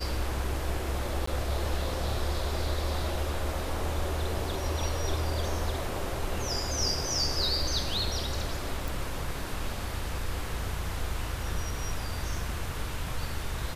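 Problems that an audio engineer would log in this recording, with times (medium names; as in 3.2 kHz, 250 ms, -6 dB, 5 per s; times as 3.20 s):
1.26–1.27 s: dropout 14 ms
8.88 s: pop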